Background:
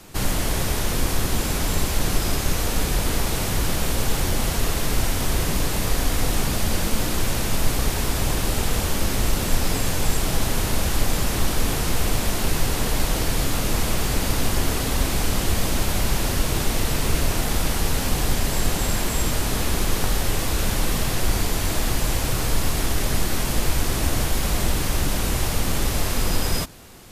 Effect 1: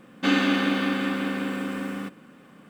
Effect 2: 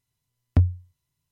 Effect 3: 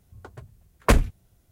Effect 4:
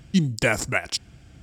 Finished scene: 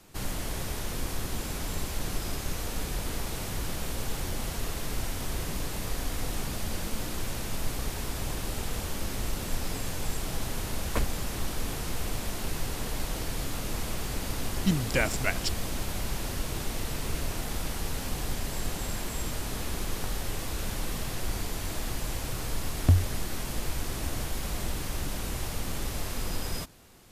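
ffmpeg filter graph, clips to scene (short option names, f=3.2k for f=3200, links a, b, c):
-filter_complex "[0:a]volume=-10.5dB[a];[3:a]atrim=end=1.51,asetpts=PTS-STARTPTS,volume=-13dB,afade=t=in:d=0.004:c=hsin,afade=t=out:st=1.506:d=0.004:c=hsin,adelay=10070[b];[4:a]atrim=end=1.42,asetpts=PTS-STARTPTS,volume=-5.5dB,afade=t=in:d=0.004:c=hsin,afade=t=out:st=1.416:d=0.004:c=hsin,adelay=14520[c];[2:a]atrim=end=1.31,asetpts=PTS-STARTPTS,volume=-2dB,afade=t=in:d=0.004:c=hsin,afade=t=out:st=1.306:d=0.004:c=hsin,adelay=22320[d];[a][b][c][d]amix=inputs=4:normalize=0"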